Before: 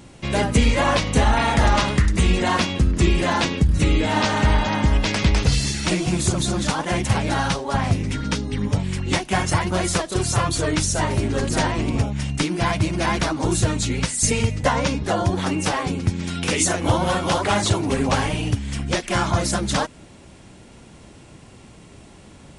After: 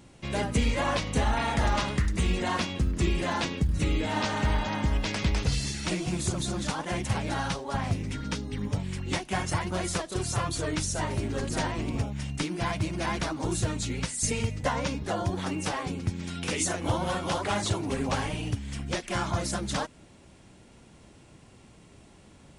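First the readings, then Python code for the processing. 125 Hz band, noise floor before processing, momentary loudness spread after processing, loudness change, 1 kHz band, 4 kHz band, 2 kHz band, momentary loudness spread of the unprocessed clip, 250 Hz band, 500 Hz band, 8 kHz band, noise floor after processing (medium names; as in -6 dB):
-8.5 dB, -46 dBFS, 5 LU, -8.5 dB, -8.5 dB, -8.5 dB, -8.5 dB, 5 LU, -8.5 dB, -8.5 dB, -8.5 dB, -54 dBFS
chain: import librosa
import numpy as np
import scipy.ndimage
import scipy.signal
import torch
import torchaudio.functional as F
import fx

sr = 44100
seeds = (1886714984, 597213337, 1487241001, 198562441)

y = fx.quant_float(x, sr, bits=6)
y = y * 10.0 ** (-8.5 / 20.0)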